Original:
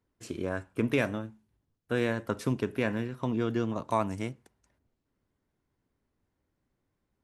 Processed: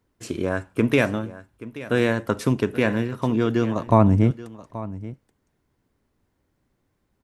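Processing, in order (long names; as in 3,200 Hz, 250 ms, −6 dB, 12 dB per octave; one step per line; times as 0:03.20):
0:03.87–0:04.31: spectral tilt −4 dB per octave
on a send: single-tap delay 829 ms −16.5 dB
on the sum: level +8 dB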